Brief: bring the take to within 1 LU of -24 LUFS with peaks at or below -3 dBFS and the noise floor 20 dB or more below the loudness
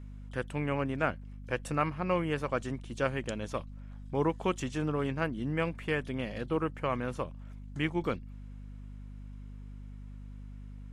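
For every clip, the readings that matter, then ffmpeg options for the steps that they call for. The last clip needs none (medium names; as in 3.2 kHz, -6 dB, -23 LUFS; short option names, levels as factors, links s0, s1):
hum 50 Hz; highest harmonic 250 Hz; hum level -42 dBFS; loudness -33.5 LUFS; peak level -14.0 dBFS; loudness target -24.0 LUFS
-> -af "bandreject=f=50:t=h:w=4,bandreject=f=100:t=h:w=4,bandreject=f=150:t=h:w=4,bandreject=f=200:t=h:w=4,bandreject=f=250:t=h:w=4"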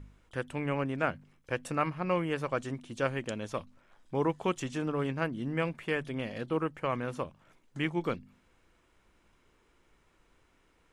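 hum not found; loudness -34.0 LUFS; peak level -14.0 dBFS; loudness target -24.0 LUFS
-> -af "volume=3.16"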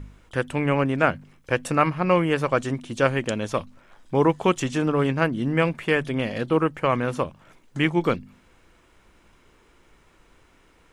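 loudness -24.0 LUFS; peak level -4.0 dBFS; noise floor -58 dBFS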